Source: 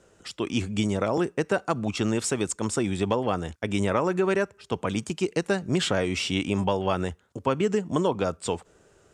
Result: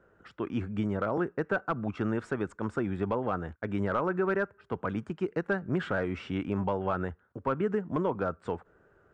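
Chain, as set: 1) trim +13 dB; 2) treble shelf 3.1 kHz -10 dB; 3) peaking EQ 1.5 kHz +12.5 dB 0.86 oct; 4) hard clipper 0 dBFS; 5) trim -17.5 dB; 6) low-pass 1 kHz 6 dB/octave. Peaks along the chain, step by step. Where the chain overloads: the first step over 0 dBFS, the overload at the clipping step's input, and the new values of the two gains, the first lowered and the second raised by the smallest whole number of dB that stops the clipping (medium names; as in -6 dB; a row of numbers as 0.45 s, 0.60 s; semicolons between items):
+3.5 dBFS, +3.0 dBFS, +7.0 dBFS, 0.0 dBFS, -17.5 dBFS, -18.0 dBFS; step 1, 7.0 dB; step 1 +6 dB, step 5 -10.5 dB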